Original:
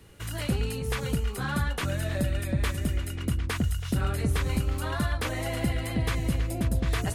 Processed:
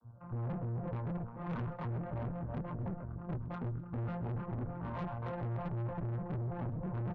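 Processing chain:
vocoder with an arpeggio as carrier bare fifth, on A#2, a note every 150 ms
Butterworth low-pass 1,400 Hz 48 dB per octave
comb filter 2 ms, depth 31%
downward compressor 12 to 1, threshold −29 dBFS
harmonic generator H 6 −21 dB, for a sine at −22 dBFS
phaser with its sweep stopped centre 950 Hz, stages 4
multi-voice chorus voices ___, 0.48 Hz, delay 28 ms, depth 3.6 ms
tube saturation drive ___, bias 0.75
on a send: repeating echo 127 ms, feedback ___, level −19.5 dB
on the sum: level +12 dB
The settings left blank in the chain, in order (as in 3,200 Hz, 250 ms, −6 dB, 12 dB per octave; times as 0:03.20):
6, 47 dB, 44%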